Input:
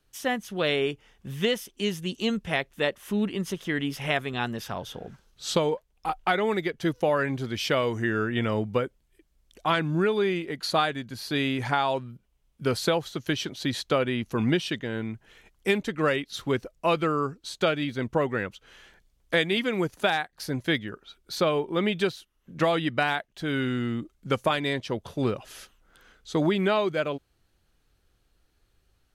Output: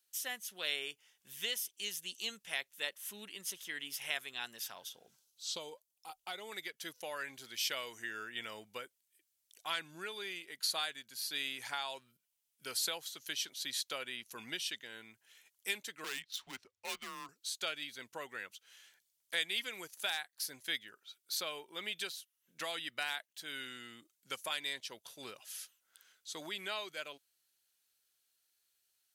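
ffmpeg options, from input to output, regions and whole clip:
ffmpeg -i in.wav -filter_complex "[0:a]asettb=1/sr,asplit=3[link_01][link_02][link_03];[link_01]atrim=end=4.894[link_04];[link_02]atrim=start=4.89:end=6.52,asetpts=PTS-STARTPTS,afade=type=in:duration=0.004:curve=qsin,afade=type=out:start_time=1.626:duration=0.004:curve=qsin,acrossover=split=6200[link_05][link_06];[link_06]acompressor=threshold=-57dB:ratio=4:attack=1:release=60[link_07];[link_05][link_07]amix=inputs=2:normalize=0,equalizer=frequency=1800:width_type=o:width=1.5:gain=-9.5,bandreject=frequency=1700:width=19[link_08];[link_03]atrim=start=6.516[link_09];[link_04][link_08]acrossfade=duration=0.004:curve1=hsin:curve2=qsin[link_10];[link_10][link_09]acrossfade=duration=0.004:curve1=qsin:curve2=hsin,asettb=1/sr,asplit=3[link_11][link_12][link_13];[link_11]atrim=end=16.044[link_14];[link_12]atrim=start=16.04:end=17.29,asetpts=PTS-STARTPTS,afade=type=in:duration=0.004:curve=qsin,afade=type=out:start_time=1.246:duration=0.004:curve=qsin,adynamicsmooth=sensitivity=6.5:basefreq=3800,asoftclip=type=hard:threshold=-22dB,afreqshift=-120[link_15];[link_13]atrim=start=17.286[link_16];[link_14][link_15]acrossfade=duration=0.004:curve1=hsin:curve2=qsin[link_17];[link_17][link_16]acrossfade=duration=0.004:curve1=qsin:curve2=hsin,aderivative,bandreject=frequency=1200:width=17,volume=1dB" out.wav

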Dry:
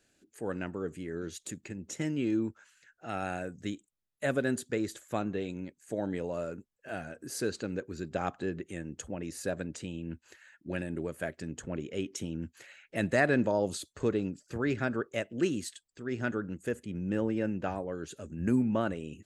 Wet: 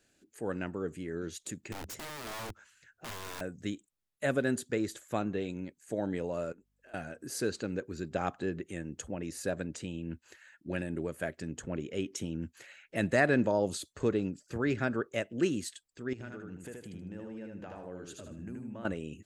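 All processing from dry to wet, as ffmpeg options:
ffmpeg -i in.wav -filter_complex "[0:a]asettb=1/sr,asplit=3[link_01][link_02][link_03];[link_01]atrim=end=1.724[link_04];[link_02]atrim=start=1.72:end=3.41,asetpts=PTS-STARTPTS,afade=type=in:duration=0.004:curve=qsin,afade=type=out:start_time=1.686:duration=0.004:curve=qsin,equalizer=frequency=84:width_type=o:width=1.9:gain=14.5,acompressor=threshold=-33dB:ratio=4:attack=3.2:release=140:knee=1:detection=peak,aeval=exprs='(mod(63.1*val(0)+1,2)-1)/63.1':channel_layout=same[link_05];[link_03]atrim=start=3.406[link_06];[link_04][link_05]acrossfade=duration=0.004:curve1=hsin:curve2=qsin[link_07];[link_07][link_06]acrossfade=duration=0.004:curve1=qsin:curve2=hsin,asettb=1/sr,asplit=3[link_08][link_09][link_10];[link_08]atrim=end=6.524[link_11];[link_09]atrim=start=6.52:end=6.94,asetpts=PTS-STARTPTS,afade=type=in:duration=0.004:curve=qsin,afade=type=out:start_time=0.416:duration=0.004:curve=qsin,highpass=250,acompressor=threshold=-58dB:ratio=3:attack=3.2:release=140:knee=1:detection=peak,aeval=exprs='val(0)+0.000126*(sin(2*PI*50*n/s)+sin(2*PI*2*50*n/s)/2+sin(2*PI*3*50*n/s)/3+sin(2*PI*4*50*n/s)/4+sin(2*PI*5*50*n/s)/5)':channel_layout=same[link_12];[link_10]atrim=start=6.936[link_13];[link_11][link_12]acrossfade=duration=0.004:curve1=hsin:curve2=qsin[link_14];[link_14][link_13]acrossfade=duration=0.004:curve1=qsin:curve2=hsin,asettb=1/sr,asplit=3[link_15][link_16][link_17];[link_15]atrim=end=16.134[link_18];[link_16]atrim=start=16.13:end=18.85,asetpts=PTS-STARTPTS,afade=type=in:duration=0.004:curve=qsin,afade=type=out:start_time=2.716:duration=0.004:curve=qsin,acompressor=threshold=-43dB:ratio=4:attack=3.2:release=140:knee=1:detection=peak,aecho=1:1:77|154|231|308:0.708|0.198|0.0555|0.0155,atrim=end_sample=119952[link_19];[link_17]atrim=start=18.846[link_20];[link_18][link_19]acrossfade=duration=0.004:curve1=hsin:curve2=qsin[link_21];[link_21][link_20]acrossfade=duration=0.004:curve1=qsin:curve2=hsin" out.wav

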